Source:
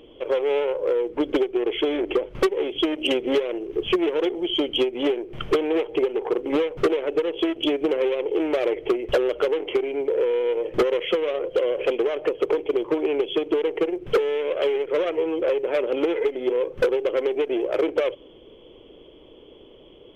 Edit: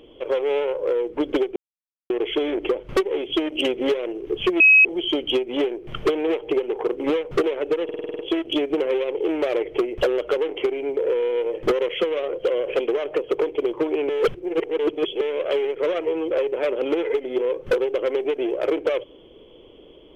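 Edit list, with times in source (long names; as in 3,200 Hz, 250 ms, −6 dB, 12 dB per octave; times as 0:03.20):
0:01.56: splice in silence 0.54 s
0:04.06–0:04.31: beep over 2,550 Hz −9 dBFS
0:07.30: stutter 0.05 s, 8 plays
0:13.20–0:14.32: reverse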